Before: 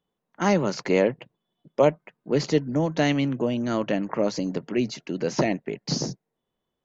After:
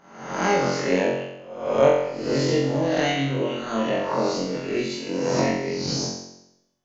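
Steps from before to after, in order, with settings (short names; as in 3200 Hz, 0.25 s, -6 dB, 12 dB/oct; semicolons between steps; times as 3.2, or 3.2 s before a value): spectral swells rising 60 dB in 0.76 s; notches 60/120/180/240/300/360 Hz; on a send: flutter echo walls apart 3.8 m, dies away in 0.82 s; on the sum: gain -4.5 dB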